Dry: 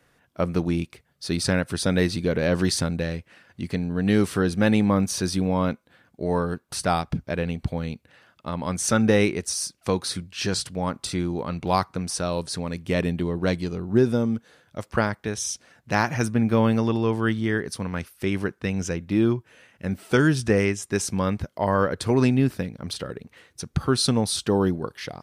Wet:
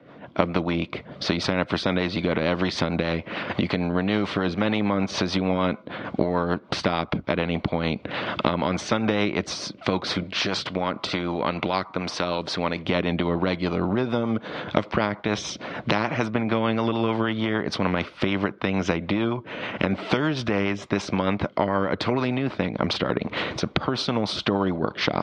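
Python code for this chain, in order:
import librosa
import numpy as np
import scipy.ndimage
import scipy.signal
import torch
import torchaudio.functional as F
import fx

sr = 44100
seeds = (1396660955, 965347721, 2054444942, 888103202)

y = fx.recorder_agc(x, sr, target_db=-10.5, rise_db_per_s=47.0, max_gain_db=30)
y = fx.low_shelf(y, sr, hz=360.0, db=-10.5, at=(10.23, 12.85))
y = fx.rotary(y, sr, hz=6.7)
y = fx.cabinet(y, sr, low_hz=130.0, low_slope=12, high_hz=3200.0, hz=(200.0, 300.0, 610.0, 1000.0, 1700.0, 2700.0), db=(6, 6, 7, 4, -9, -6))
y = fx.spectral_comp(y, sr, ratio=2.0)
y = y * 10.0 ** (-4.0 / 20.0)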